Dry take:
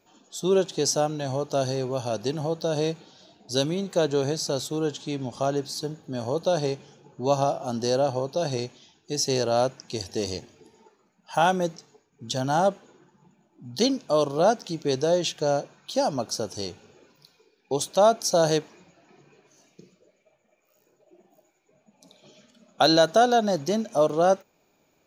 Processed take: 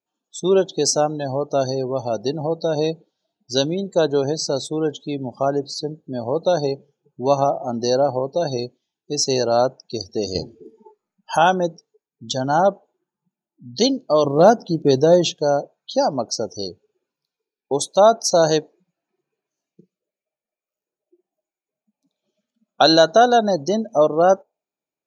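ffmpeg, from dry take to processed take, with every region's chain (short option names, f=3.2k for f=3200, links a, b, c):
-filter_complex "[0:a]asettb=1/sr,asplit=3[a][b][c];[a]atrim=end=10.354[d];[b]atrim=start=10.35:end=11.37,asetpts=PTS-STARTPTS,afade=t=in:d=0.004:c=qsin,afade=t=out:st=1.016:d=0.004:c=qsin,lowshelf=f=81:g=10,asplit=2[e][f];[f]adelay=38,volume=-6dB[g];[e][g]amix=inputs=2:normalize=0,atrim=end_sample=44982,acontrast=73[h];[c]atrim=start=11.366[i];[d][h]acrossfade=d=0.004:c1=hsin:c2=qsin[j];[j][i]acrossfade=d=0.004:c1=qsin:c2=hsin,asettb=1/sr,asplit=3[k][l][m];[k]atrim=end=14.244[n];[l]atrim=start=14.24:end=15.35,asetpts=PTS-STARTPTS,afade=t=in:d=0.004:c=qsin,afade=t=out:st=1.106:d=0.004:c=qsin,lowshelf=f=410:g=8.5,acrusher=bits=5:mode=log:mix=0:aa=0.000001[o];[m]atrim=start=15.346[p];[n][o]acrossfade=d=0.004:c1=hsin:c2=qsin[q];[q][p]acrossfade=d=0.004:c1=qsin:c2=hsin,afftdn=nr=30:nf=-35,lowshelf=f=110:g=-10.5,volume=6dB"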